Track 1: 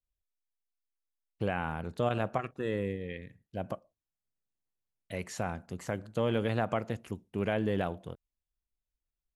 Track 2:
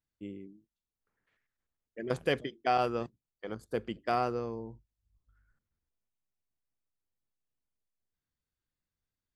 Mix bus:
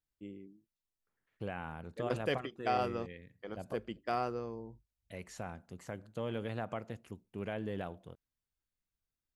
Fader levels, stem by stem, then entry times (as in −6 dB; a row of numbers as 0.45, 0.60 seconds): −8.5, −4.5 decibels; 0.00, 0.00 seconds